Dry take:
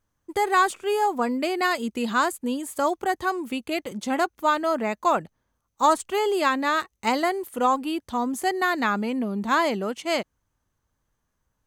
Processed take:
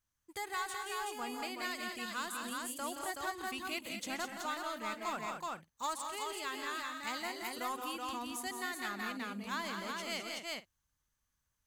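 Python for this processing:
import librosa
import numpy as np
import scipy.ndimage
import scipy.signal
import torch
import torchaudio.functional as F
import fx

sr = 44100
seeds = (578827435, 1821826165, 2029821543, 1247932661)

p1 = fx.tone_stack(x, sr, knobs='5-5-5')
p2 = 10.0 ** (-38.0 / 20.0) * (np.abs((p1 / 10.0 ** (-38.0 / 20.0) + 3.0) % 4.0 - 2.0) - 1.0)
p3 = p1 + (p2 * 10.0 ** (-8.0 / 20.0))
p4 = fx.echo_multitap(p3, sr, ms=(129, 174, 210, 376, 425), db=(-14.0, -7.0, -8.0, -4.0, -19.5))
p5 = fx.rider(p4, sr, range_db=4, speed_s=0.5)
y = p5 * 10.0 ** (-4.0 / 20.0)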